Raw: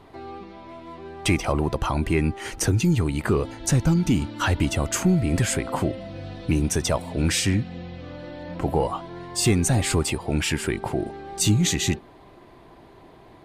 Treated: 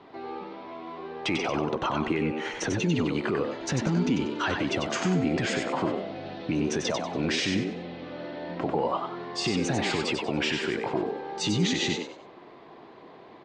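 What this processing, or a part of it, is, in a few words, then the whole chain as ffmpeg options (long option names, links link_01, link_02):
DJ mixer with the lows and highs turned down: -filter_complex "[0:a]acrossover=split=150 5500:gain=0.0794 1 0.224[link_01][link_02][link_03];[link_01][link_02][link_03]amix=inputs=3:normalize=0,alimiter=limit=-18.5dB:level=0:latency=1:release=44,asettb=1/sr,asplit=3[link_04][link_05][link_06];[link_04]atrim=end=1.604[link_07];[link_05]atrim=start=1.6:end=2.95,asetpts=PTS-STARTPTS,afade=type=in:duration=0.004:curve=qsin,afade=type=out:start_time=1.346:duration=0.004:curve=qsin,bandreject=frequency=4800:width=6.2[link_08];[link_06]atrim=start=2.946[link_09];[link_07][link_08]acrossfade=duration=0.004:curve1=hsin:curve2=qsin[link_10];[link_10][link_09]acrossfade=duration=0.004:curve1=qsin:curve2=hsin,lowpass=frequency=6500:width=0.5412,lowpass=frequency=6500:width=1.3066,asplit=5[link_11][link_12][link_13][link_14][link_15];[link_12]adelay=95,afreqshift=79,volume=-5dB[link_16];[link_13]adelay=190,afreqshift=158,volume=-15.5dB[link_17];[link_14]adelay=285,afreqshift=237,volume=-25.9dB[link_18];[link_15]adelay=380,afreqshift=316,volume=-36.4dB[link_19];[link_11][link_16][link_17][link_18][link_19]amix=inputs=5:normalize=0"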